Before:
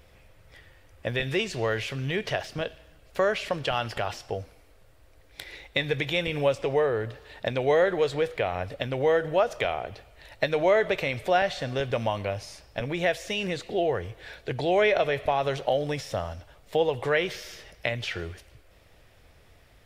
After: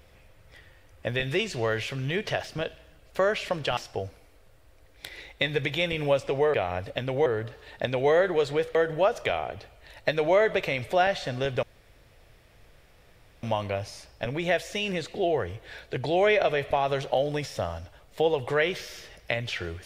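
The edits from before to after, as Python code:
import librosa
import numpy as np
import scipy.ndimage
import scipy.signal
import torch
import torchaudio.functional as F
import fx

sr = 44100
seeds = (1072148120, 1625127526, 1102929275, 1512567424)

y = fx.edit(x, sr, fx.cut(start_s=3.77, length_s=0.35),
    fx.move(start_s=8.38, length_s=0.72, to_s=6.89),
    fx.insert_room_tone(at_s=11.98, length_s=1.8), tone=tone)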